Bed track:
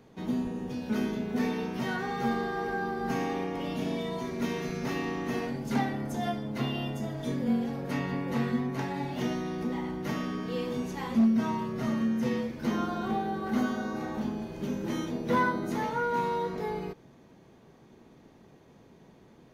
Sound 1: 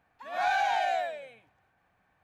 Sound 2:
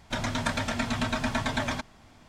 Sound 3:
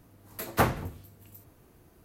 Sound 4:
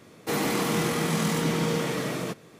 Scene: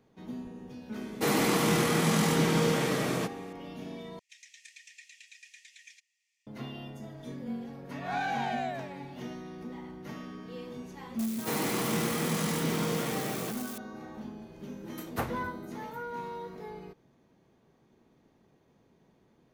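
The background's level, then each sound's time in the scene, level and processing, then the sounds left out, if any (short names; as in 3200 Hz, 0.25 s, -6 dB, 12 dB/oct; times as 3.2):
bed track -9.5 dB
0.94 add 4
4.19 replace with 2 -12.5 dB + rippled Chebyshev high-pass 1800 Hz, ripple 9 dB
7.7 add 1 -5.5 dB
11.19 add 4 -5 dB + switching spikes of -28 dBFS
14.59 add 3 -9.5 dB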